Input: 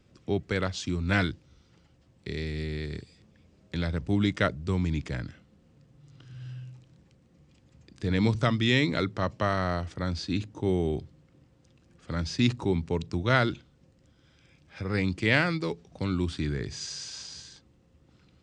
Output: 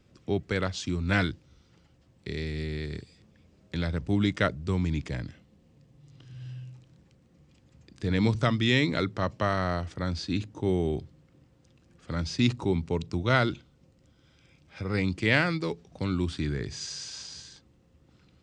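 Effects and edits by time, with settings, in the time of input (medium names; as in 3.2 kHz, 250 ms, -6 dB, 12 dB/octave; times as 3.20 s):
5.07–6.71 s: peaking EQ 1.4 kHz -7.5 dB 0.31 oct
12.14–15.14 s: band-stop 1.7 kHz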